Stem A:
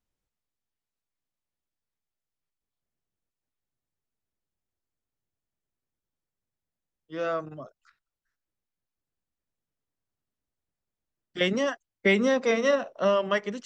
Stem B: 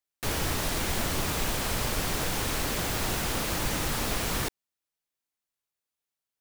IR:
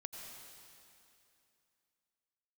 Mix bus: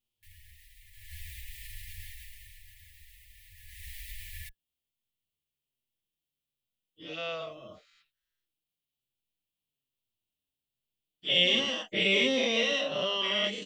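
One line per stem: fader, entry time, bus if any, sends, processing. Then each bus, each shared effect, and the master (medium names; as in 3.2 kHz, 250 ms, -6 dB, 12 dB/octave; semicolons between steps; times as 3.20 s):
-8.0 dB, 0.00 s, no send, every event in the spectrogram widened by 240 ms; resonant high shelf 2.2 kHz +11.5 dB, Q 3
0.90 s -18.5 dB -> 1.16 s -6.5 dB -> 2.00 s -6.5 dB -> 2.73 s -17.5 dB -> 3.54 s -17.5 dB -> 3.88 s -5.5 dB, 0.00 s, no send, FFT band-reject 100–1700 Hz; peak limiter -22.5 dBFS, peak gain reduction 4 dB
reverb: none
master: peaking EQ 5.9 kHz -11 dB 1.3 oct; endless flanger 5.7 ms -1.2 Hz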